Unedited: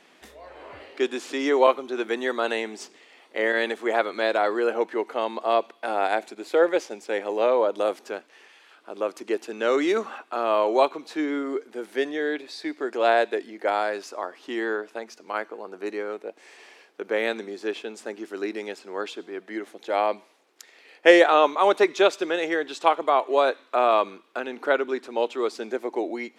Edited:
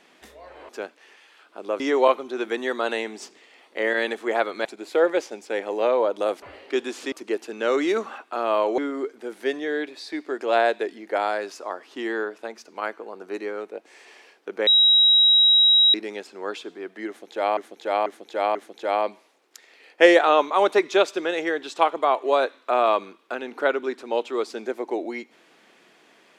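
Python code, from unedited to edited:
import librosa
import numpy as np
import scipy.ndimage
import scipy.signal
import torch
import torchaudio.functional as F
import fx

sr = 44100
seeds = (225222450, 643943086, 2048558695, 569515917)

y = fx.edit(x, sr, fx.swap(start_s=0.69, length_s=0.7, other_s=8.01, other_length_s=1.11),
    fx.cut(start_s=4.24, length_s=2.0),
    fx.cut(start_s=10.78, length_s=0.52),
    fx.bleep(start_s=17.19, length_s=1.27, hz=3840.0, db=-12.5),
    fx.repeat(start_s=19.6, length_s=0.49, count=4), tone=tone)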